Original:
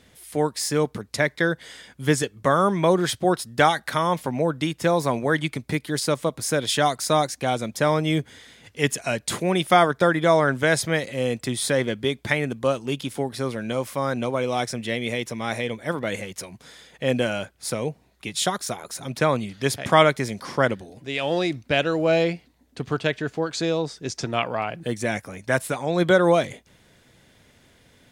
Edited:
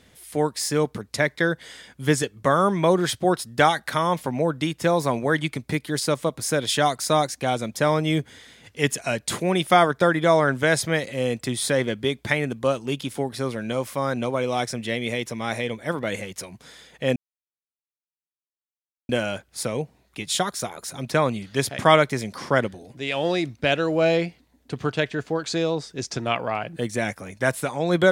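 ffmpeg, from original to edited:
-filter_complex "[0:a]asplit=2[a][b];[a]atrim=end=17.16,asetpts=PTS-STARTPTS,afade=t=out:st=17.156:d=0.004:c=hsin,apad=pad_dur=1.93[c];[b]atrim=start=17.16,asetpts=PTS-STARTPTS,afade=t=in:d=0.004:c=hsin[d];[c][d]concat=n=2:v=0:a=1"

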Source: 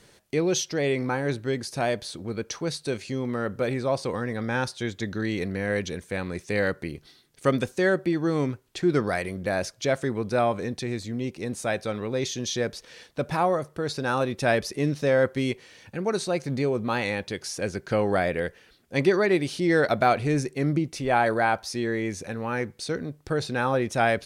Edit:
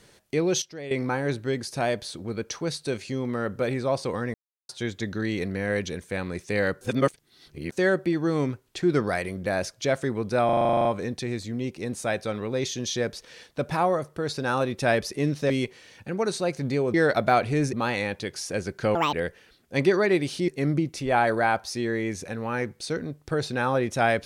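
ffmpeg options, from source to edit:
-filter_complex "[0:a]asplit=23[a][b][c][d][e][f][g][h][i][j][k][l][m][n][o][p][q][r][s][t][u][v][w];[a]atrim=end=0.622[x];[b]atrim=start=0.618:end=0.912,asetpts=PTS-STARTPTS,volume=-11.5dB[y];[c]atrim=start=0.908:end=4.34,asetpts=PTS-STARTPTS,afade=t=out:st=3.428:d=0.004:c=hsin[z];[d]atrim=start=4.34:end=4.69,asetpts=PTS-STARTPTS,volume=0[aa];[e]atrim=start=4.69:end=6.812,asetpts=PTS-STARTPTS,afade=t=in:d=0.004:c=hsin[ab];[f]atrim=start=6.808:end=7.722,asetpts=PTS-STARTPTS,areverse[ac];[g]atrim=start=7.718:end=10.492[ad];[h]atrim=start=10.448:end=10.492[ae];[i]atrim=start=10.448:end=10.492[af];[j]atrim=start=10.448:end=10.492[ag];[k]atrim=start=10.448:end=10.492[ah];[l]atrim=start=10.448:end=10.492[ai];[m]atrim=start=10.448:end=10.492[aj];[n]atrim=start=10.448:end=10.492[ak];[o]atrim=start=10.448:end=10.492[al];[p]atrim=start=10.448:end=10.492[am];[q]atrim=start=10.448:end=15.102[an];[r]atrim=start=15.368:end=16.812[ao];[s]atrim=start=19.678:end=20.472[ap];[t]atrim=start=16.808:end=18.034[aq];[u]atrim=start=18.03:end=18.33,asetpts=PTS-STARTPTS,asetrate=73206,aresample=44100[ar];[v]atrim=start=18.326:end=19.682[as];[w]atrim=start=20.468[at];[x][y]acrossfade=d=0.004:c1=hsin:c2=hsin[au];[z][aa][ab]concat=n=3:v=0:a=1[av];[au][av]acrossfade=d=0.004:c1=hsin:c2=hsin[aw];[aw][ac]acrossfade=d=0.004:c1=hsin:c2=hsin[ax];[ax][ad]acrossfade=d=0.004:c1=hsin:c2=hsin[ay];[ay][ae]acrossfade=d=0.004:c1=hsin:c2=hsin[az];[az][af]acrossfade=d=0.004:c1=hsin:c2=hsin[ba];[ba][ag]acrossfade=d=0.004:c1=hsin:c2=hsin[bb];[bb][ah]acrossfade=d=0.004:c1=hsin:c2=hsin[bc];[bc][ai]acrossfade=d=0.004:c1=hsin:c2=hsin[bd];[bd][aj]acrossfade=d=0.004:c1=hsin:c2=hsin[be];[be][ak]acrossfade=d=0.004:c1=hsin:c2=hsin[bf];[bf][al]acrossfade=d=0.004:c1=hsin:c2=hsin[bg];[bg][am]acrossfade=d=0.004:c1=hsin:c2=hsin[bh];[bh][an]acrossfade=d=0.004:c1=hsin:c2=hsin[bi];[bi][ao]acrossfade=d=0.004:c1=hsin:c2=hsin[bj];[bj][ap]acrossfade=d=0.004:c1=hsin:c2=hsin[bk];[bk][aq]acrossfade=d=0.004:c1=hsin:c2=hsin[bl];[bl][ar]acrossfade=d=0.004:c1=hsin:c2=hsin[bm];[bm][as]acrossfade=d=0.004:c1=hsin:c2=hsin[bn];[bn][at]acrossfade=d=0.004:c1=hsin:c2=hsin"

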